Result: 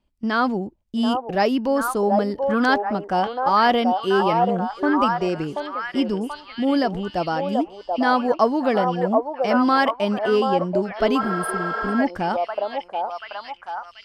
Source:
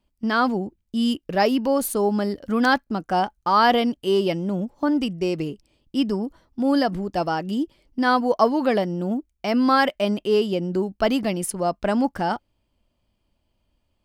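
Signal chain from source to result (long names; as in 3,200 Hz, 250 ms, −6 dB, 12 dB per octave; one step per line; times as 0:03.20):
high-shelf EQ 9,300 Hz −11.5 dB
on a send: echo through a band-pass that steps 733 ms, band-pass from 680 Hz, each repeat 0.7 octaves, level 0 dB
on the sum: healed spectral selection 0:11.23–0:11.92, 450–8,300 Hz after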